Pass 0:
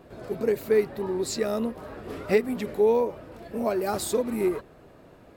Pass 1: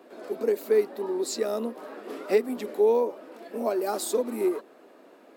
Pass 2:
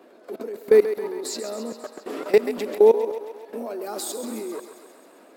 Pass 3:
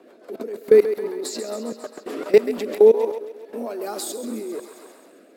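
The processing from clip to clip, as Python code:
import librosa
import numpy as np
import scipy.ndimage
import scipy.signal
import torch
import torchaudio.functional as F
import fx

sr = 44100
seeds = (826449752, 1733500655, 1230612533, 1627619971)

y1 = scipy.signal.sosfilt(scipy.signal.butter(6, 240.0, 'highpass', fs=sr, output='sos'), x)
y1 = fx.dynamic_eq(y1, sr, hz=2100.0, q=1.1, threshold_db=-46.0, ratio=4.0, max_db=-5)
y2 = fx.level_steps(y1, sr, step_db=20)
y2 = fx.echo_thinned(y2, sr, ms=134, feedback_pct=68, hz=390.0, wet_db=-9.5)
y2 = y2 * 10.0 ** (8.5 / 20.0)
y3 = fx.rotary_switch(y2, sr, hz=7.0, then_hz=1.0, switch_at_s=2.32)
y3 = y3 * 10.0 ** (3.5 / 20.0)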